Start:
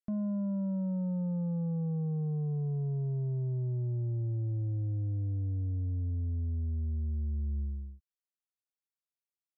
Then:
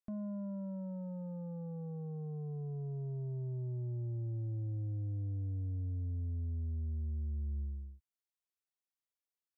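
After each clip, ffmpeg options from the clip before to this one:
-af "equalizer=f=170:w=2.3:g=-6.5,volume=-4dB"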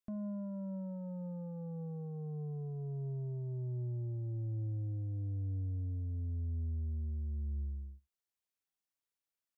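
-af "aecho=1:1:73:0.0841"

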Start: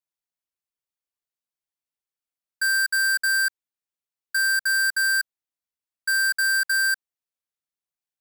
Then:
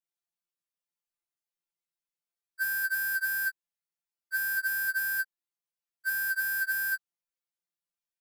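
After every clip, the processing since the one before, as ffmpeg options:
-af "afftfilt=real='re*2.83*eq(mod(b,8),0)':imag='im*2.83*eq(mod(b,8),0)':win_size=2048:overlap=0.75,volume=-2dB"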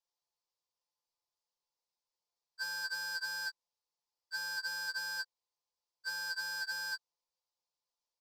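-af "firequalizer=gain_entry='entry(120,0);entry(230,-14);entry(460,7);entry(670,3);entry(950,11);entry(1500,-10);entry(4800,8);entry(12000,-19)':delay=0.05:min_phase=1"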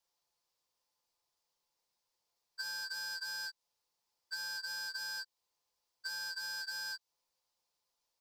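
-filter_complex "[0:a]alimiter=level_in=9dB:limit=-24dB:level=0:latency=1:release=62,volume=-9dB,acrossover=split=2600|5500[a][b][c];[a]acompressor=threshold=-53dB:ratio=4[d];[b]acompressor=threshold=-52dB:ratio=4[e];[c]acompressor=threshold=-56dB:ratio=4[f];[d][e][f]amix=inputs=3:normalize=0,volume=7dB"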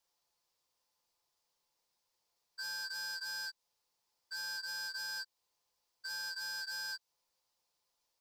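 -af "alimiter=level_in=11.5dB:limit=-24dB:level=0:latency=1:release=22,volume=-11.5dB,volume=2dB"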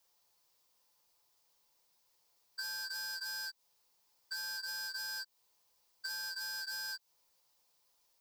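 -af "highshelf=f=12k:g=9.5,acompressor=threshold=-43dB:ratio=6,volume=5dB"

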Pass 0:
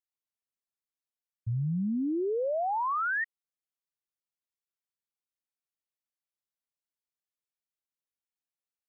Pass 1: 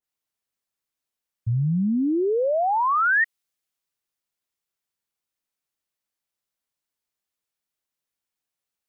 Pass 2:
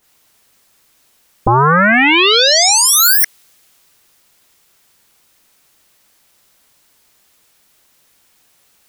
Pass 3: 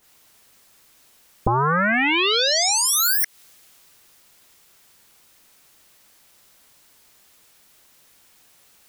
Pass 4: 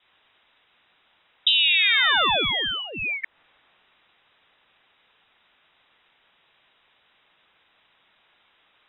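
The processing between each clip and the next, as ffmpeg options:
-af "adynamicequalizer=threshold=0.00708:dfrequency=1700:dqfactor=0.7:tfrequency=1700:tqfactor=0.7:attack=5:release=100:ratio=0.375:range=3:mode=boostabove:tftype=highshelf,volume=7.5dB"
-af "aeval=exprs='0.178*sin(PI/2*8.91*val(0)/0.178)':c=same,volume=8dB"
-af "acompressor=threshold=-18dB:ratio=10"
-af "lowpass=f=3.3k:t=q:w=0.5098,lowpass=f=3.3k:t=q:w=0.6013,lowpass=f=3.3k:t=q:w=0.9,lowpass=f=3.3k:t=q:w=2.563,afreqshift=-3900"

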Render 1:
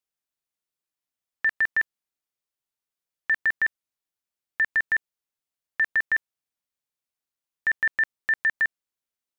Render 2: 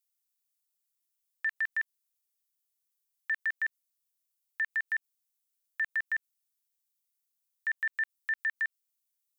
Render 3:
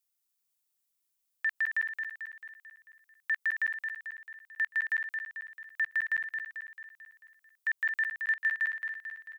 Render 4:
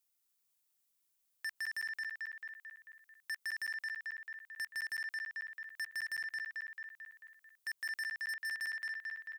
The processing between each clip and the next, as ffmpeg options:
-filter_complex "[0:a]acrossover=split=3300[a][b];[b]acompressor=threshold=-58dB:ratio=4:attack=1:release=60[c];[a][c]amix=inputs=2:normalize=0,aderivative,volume=4.5dB"
-af "aecho=1:1:221|442|663|884|1105|1326|1547:0.501|0.276|0.152|0.0834|0.0459|0.0252|0.0139,volume=1dB"
-af "asoftclip=type=tanh:threshold=-37.5dB,volume=1dB"

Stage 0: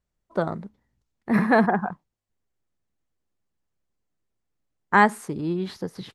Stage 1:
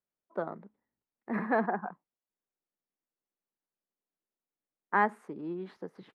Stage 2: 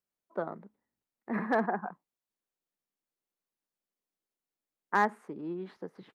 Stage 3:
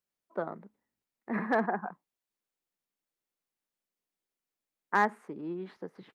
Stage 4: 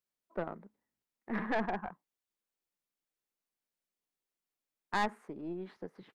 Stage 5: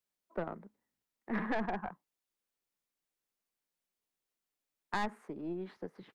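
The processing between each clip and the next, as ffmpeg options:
-filter_complex "[0:a]acrossover=split=200 2400:gain=0.0891 1 0.126[a][b][c];[a][b][c]amix=inputs=3:normalize=0,volume=-8.5dB"
-af "asoftclip=type=hard:threshold=-16dB"
-af "equalizer=f=2.2k:w=1.5:g=2"
-af "aeval=exprs='(tanh(17.8*val(0)+0.6)-tanh(0.6))/17.8':c=same"
-filter_complex "[0:a]acrossover=split=210[a][b];[b]acompressor=threshold=-33dB:ratio=3[c];[a][c]amix=inputs=2:normalize=0,volume=1dB"

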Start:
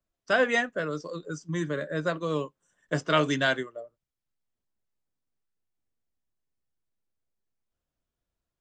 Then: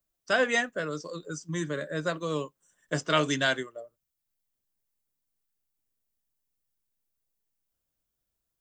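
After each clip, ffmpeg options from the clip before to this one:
-af "aemphasis=mode=production:type=50kf,volume=-2dB"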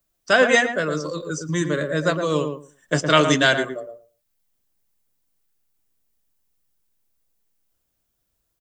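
-filter_complex "[0:a]asplit=2[a][b];[b]adelay=113,lowpass=f=940:p=1,volume=-5dB,asplit=2[c][d];[d]adelay=113,lowpass=f=940:p=1,volume=0.18,asplit=2[e][f];[f]adelay=113,lowpass=f=940:p=1,volume=0.18[g];[a][c][e][g]amix=inputs=4:normalize=0,volume=8.5dB"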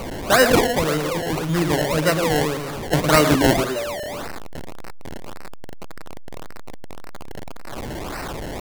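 -af "aeval=exprs='val(0)+0.5*0.0668*sgn(val(0))':c=same,acrusher=samples=25:mix=1:aa=0.000001:lfo=1:lforange=25:lforate=1.8"

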